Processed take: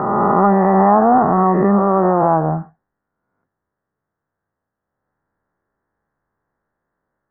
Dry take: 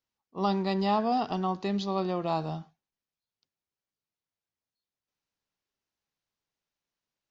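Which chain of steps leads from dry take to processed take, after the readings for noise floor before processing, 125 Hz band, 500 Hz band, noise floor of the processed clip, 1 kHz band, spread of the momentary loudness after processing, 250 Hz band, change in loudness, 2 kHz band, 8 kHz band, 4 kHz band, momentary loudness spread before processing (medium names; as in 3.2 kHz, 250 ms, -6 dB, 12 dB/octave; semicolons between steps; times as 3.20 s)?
under -85 dBFS, +15.0 dB, +16.0 dB, -81 dBFS, +17.0 dB, 5 LU, +15.0 dB, +15.5 dB, +13.5 dB, no reading, under -35 dB, 8 LU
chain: reverse spectral sustain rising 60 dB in 2.24 s; steep low-pass 1.8 kHz 72 dB/octave; in parallel at +1.5 dB: peak limiter -20.5 dBFS, peak gain reduction 7.5 dB; on the sum: trim +8 dB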